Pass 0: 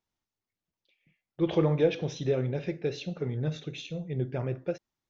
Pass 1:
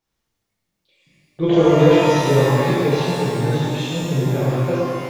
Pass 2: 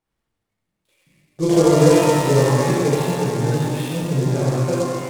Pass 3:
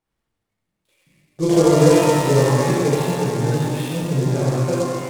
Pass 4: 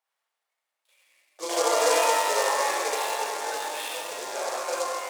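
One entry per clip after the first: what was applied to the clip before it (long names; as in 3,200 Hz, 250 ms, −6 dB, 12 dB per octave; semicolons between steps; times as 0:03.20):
reverb with rising layers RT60 2.1 s, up +12 semitones, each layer −8 dB, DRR −7.5 dB; level +4.5 dB
high-frequency loss of the air 150 metres; short delay modulated by noise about 5,800 Hz, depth 0.041 ms
no processing that can be heard
high-pass filter 640 Hz 24 dB per octave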